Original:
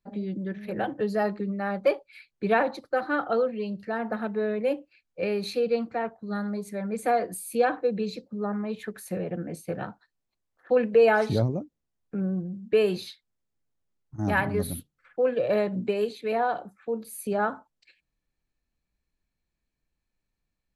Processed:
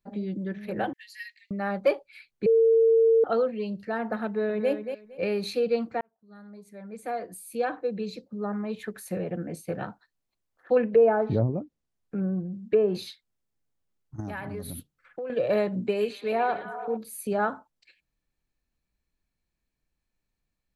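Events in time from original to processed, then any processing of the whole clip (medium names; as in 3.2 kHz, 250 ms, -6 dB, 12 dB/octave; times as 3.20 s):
0.93–1.51 s: steep high-pass 1.8 kHz 96 dB/octave
2.46–3.24 s: bleep 453 Hz -16 dBFS
4.26–4.71 s: echo throw 230 ms, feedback 20%, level -8 dB
6.01–8.88 s: fade in linear
10.77–12.95 s: low-pass that closes with the level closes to 900 Hz, closed at -18.5 dBFS
14.20–15.30 s: compression, threshold -32 dBFS
15.82–16.97 s: repeats whose band climbs or falls 112 ms, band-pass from 2.6 kHz, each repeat -0.7 oct, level -4.5 dB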